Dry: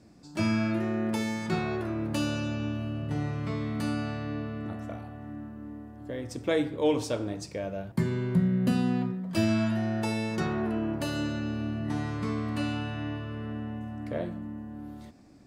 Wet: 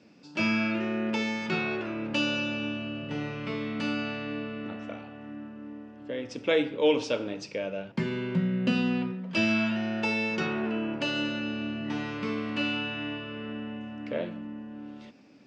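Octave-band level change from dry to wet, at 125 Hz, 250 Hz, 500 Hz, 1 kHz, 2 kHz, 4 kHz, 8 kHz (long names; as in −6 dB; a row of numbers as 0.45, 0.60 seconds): −6.5, −0.5, +1.5, 0.0, +6.5, +6.5, −4.5 decibels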